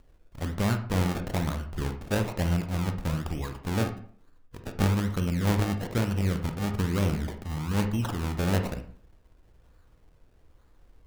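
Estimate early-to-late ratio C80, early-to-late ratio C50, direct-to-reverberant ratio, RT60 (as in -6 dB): 14.0 dB, 9.0 dB, 6.0 dB, 0.50 s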